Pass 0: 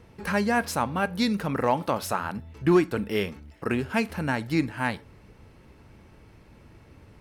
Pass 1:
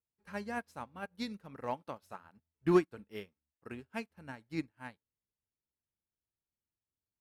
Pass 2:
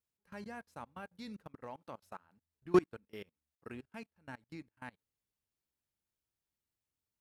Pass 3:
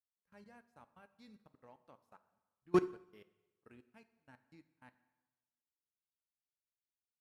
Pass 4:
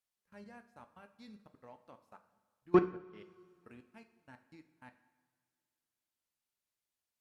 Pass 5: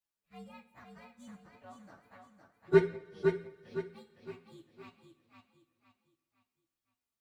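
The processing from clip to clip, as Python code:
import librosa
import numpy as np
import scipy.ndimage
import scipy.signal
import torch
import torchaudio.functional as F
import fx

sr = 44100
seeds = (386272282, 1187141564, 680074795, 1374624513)

y1 = fx.upward_expand(x, sr, threshold_db=-45.0, expansion=2.5)
y1 = y1 * librosa.db_to_amplitude(-4.5)
y2 = fx.level_steps(y1, sr, step_db=24)
y2 = y2 * librosa.db_to_amplitude(3.0)
y3 = fx.rev_plate(y2, sr, seeds[0], rt60_s=1.2, hf_ratio=0.85, predelay_ms=0, drr_db=9.0)
y3 = fx.upward_expand(y3, sr, threshold_db=-53.0, expansion=1.5)
y3 = y3 * librosa.db_to_amplitude(-2.0)
y4 = fx.rev_double_slope(y3, sr, seeds[1], early_s=0.36, late_s=2.6, knee_db=-20, drr_db=10.0)
y4 = fx.env_lowpass_down(y4, sr, base_hz=2500.0, full_db=-39.5)
y4 = y4 * librosa.db_to_amplitude(4.5)
y5 = fx.partial_stretch(y4, sr, pct=121)
y5 = fx.echo_feedback(y5, sr, ms=511, feedback_pct=37, wet_db=-5.5)
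y5 = y5 * librosa.db_to_amplitude(4.0)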